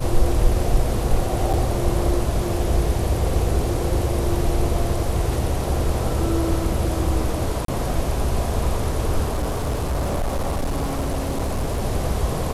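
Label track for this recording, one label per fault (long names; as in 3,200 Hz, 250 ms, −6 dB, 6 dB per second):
1.530000	1.540000	drop-out 7.1 ms
7.650000	7.680000	drop-out 33 ms
9.280000	11.810000	clipping −19 dBFS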